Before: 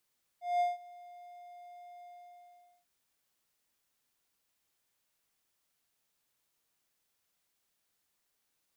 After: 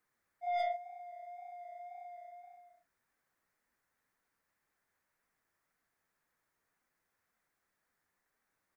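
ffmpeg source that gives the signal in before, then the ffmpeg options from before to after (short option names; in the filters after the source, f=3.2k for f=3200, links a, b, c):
-f lavfi -i "aevalsrc='0.0708*(1-4*abs(mod(707*t+0.25,1)-0.5))':d=2.443:s=44100,afade=t=in:d=0.193,afade=t=out:st=0.193:d=0.169:silence=0.0668,afade=t=out:st=1.63:d=0.813"
-af "firequalizer=gain_entry='entry(610,0);entry(1800,5);entry(2900,-12);entry(5900,-10)':delay=0.05:min_phase=1,aeval=exprs='0.0668*(cos(1*acos(clip(val(0)/0.0668,-1,1)))-cos(1*PI/2))+0.00266*(cos(2*acos(clip(val(0)/0.0668,-1,1)))-cos(2*PI/2))+0.0133*(cos(5*acos(clip(val(0)/0.0668,-1,1)))-cos(5*PI/2))':c=same,flanger=delay=3.8:depth=7.7:regen=-37:speed=1.9:shape=sinusoidal"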